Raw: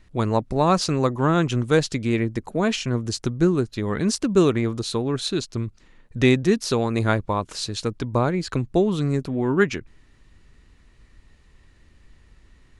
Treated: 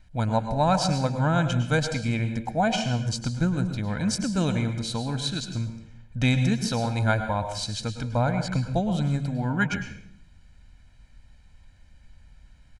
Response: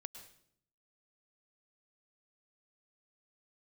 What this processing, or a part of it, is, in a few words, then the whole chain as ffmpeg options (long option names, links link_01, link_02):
microphone above a desk: -filter_complex "[0:a]aecho=1:1:1.3:0.87[link_01];[1:a]atrim=start_sample=2205[link_02];[link_01][link_02]afir=irnorm=-1:irlink=0,asettb=1/sr,asplit=3[link_03][link_04][link_05];[link_03]atrim=end=2.464[link_06];[link_04]atrim=start=2.46:end=3.02,asetpts=PTS-STARTPTS,afade=type=in:duration=0.004:curve=qsin,afade=type=out:start_time=0.556:duration=0.004:curve=qsin,equalizer=frequency=760:width=5.8:gain=12[link_07];[link_05]atrim=start=3.016[link_08];[link_06][link_07]acrossfade=duration=0.004:curve1=hsin:curve2=qsin[link_09];[link_09][link_08]acrossfade=duration=0.004:curve1=qsin:curve2=hsin"